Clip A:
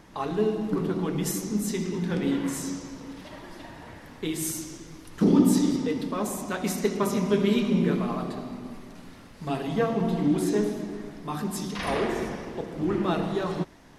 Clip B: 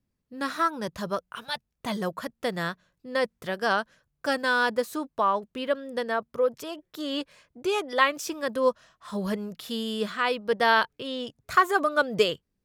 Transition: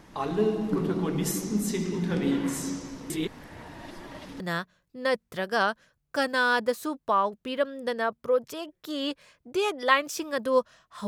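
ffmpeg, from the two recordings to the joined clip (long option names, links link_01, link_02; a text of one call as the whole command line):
ffmpeg -i cue0.wav -i cue1.wav -filter_complex "[0:a]apad=whole_dur=11.07,atrim=end=11.07,asplit=2[link_01][link_02];[link_01]atrim=end=3.102[link_03];[link_02]atrim=start=3.098:end=4.402,asetpts=PTS-STARTPTS,areverse[link_04];[1:a]atrim=start=2.498:end=9.17[link_05];[link_03][link_04]acrossfade=duration=0.004:curve1=hsin:curve2=hsin[link_06];[link_06][link_05]acrossfade=duration=0.004:curve1=hsin:curve2=hsin" out.wav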